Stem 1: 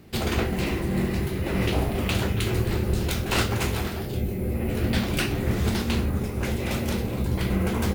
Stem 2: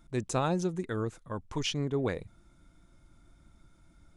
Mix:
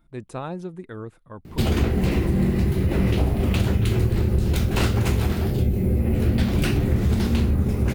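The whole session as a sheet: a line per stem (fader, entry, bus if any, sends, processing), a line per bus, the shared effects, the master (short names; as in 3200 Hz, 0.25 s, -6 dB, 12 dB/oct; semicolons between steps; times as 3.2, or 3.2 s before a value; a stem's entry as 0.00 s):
+1.5 dB, 1.45 s, no send, low shelf 360 Hz +10 dB
-2.5 dB, 0.00 s, no send, bell 6500 Hz -14 dB 0.83 oct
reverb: off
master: compressor 4:1, threshold -17 dBFS, peak gain reduction 8 dB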